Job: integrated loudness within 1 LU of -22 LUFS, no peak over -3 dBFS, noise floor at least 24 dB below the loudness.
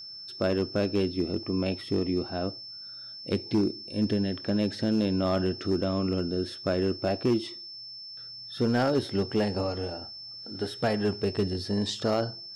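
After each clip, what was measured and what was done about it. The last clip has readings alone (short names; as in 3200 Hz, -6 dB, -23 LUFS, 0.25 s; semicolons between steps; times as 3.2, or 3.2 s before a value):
clipped 0.7%; flat tops at -18.5 dBFS; steady tone 5300 Hz; tone level -40 dBFS; loudness -28.5 LUFS; peak -18.5 dBFS; loudness target -22.0 LUFS
-> clip repair -18.5 dBFS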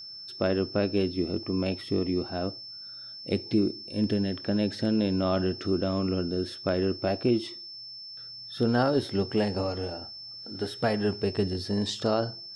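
clipped 0.0%; steady tone 5300 Hz; tone level -40 dBFS
-> notch 5300 Hz, Q 30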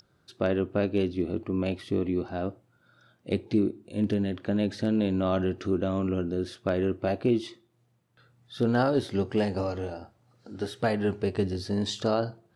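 steady tone none; loudness -28.5 LUFS; peak -11.5 dBFS; loudness target -22.0 LUFS
-> gain +6.5 dB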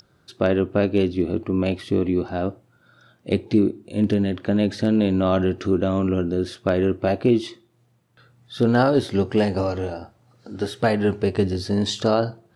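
loudness -22.0 LUFS; peak -5.0 dBFS; noise floor -61 dBFS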